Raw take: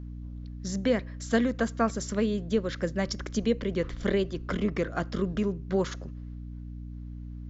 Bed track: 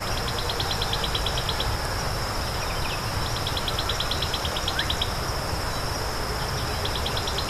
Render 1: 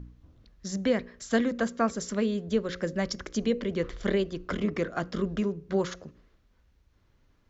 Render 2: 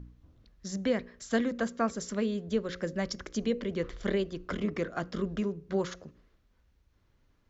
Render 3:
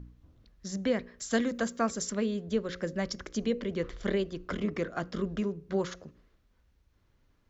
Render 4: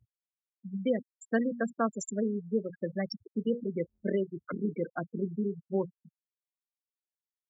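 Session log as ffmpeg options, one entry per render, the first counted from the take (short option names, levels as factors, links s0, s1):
-af "bandreject=f=60:t=h:w=4,bandreject=f=120:t=h:w=4,bandreject=f=180:t=h:w=4,bandreject=f=240:t=h:w=4,bandreject=f=300:t=h:w=4,bandreject=f=360:t=h:w=4,bandreject=f=420:t=h:w=4,bandreject=f=480:t=h:w=4,bandreject=f=540:t=h:w=4"
-af "volume=0.708"
-filter_complex "[0:a]asettb=1/sr,asplit=3[s0][s1][s2];[s0]atrim=end=1.194[s3];[s1]atrim=start=1.19:end=2.1,asetpts=PTS-STARTPTS,afade=t=in:d=0.004:c=qsin,afade=t=out:st=0.906:d=0.004:c=qsin,highshelf=f=5600:g=10.5[s4];[s2]atrim=start=2.096[s5];[s3][s4]acrossfade=d=0.004:c1=hsin:c2=qsin[s6];[s6][s5]acrossfade=d=0.004:c1=qsin:c2=hsin"
-af "afftfilt=real='re*gte(hypot(re,im),0.0562)':imag='im*gte(hypot(re,im),0.0562)':win_size=1024:overlap=0.75,highpass=f=120:w=0.5412,highpass=f=120:w=1.3066"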